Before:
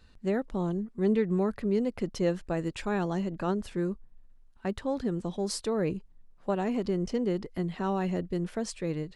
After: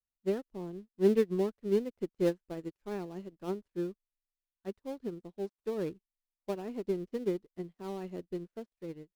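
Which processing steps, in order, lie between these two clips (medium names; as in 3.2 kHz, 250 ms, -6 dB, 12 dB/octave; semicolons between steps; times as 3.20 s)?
dead-time distortion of 0.16 ms; dynamic bell 370 Hz, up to +7 dB, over -43 dBFS, Q 1.4; upward expansion 2.5:1, over -45 dBFS; trim -2 dB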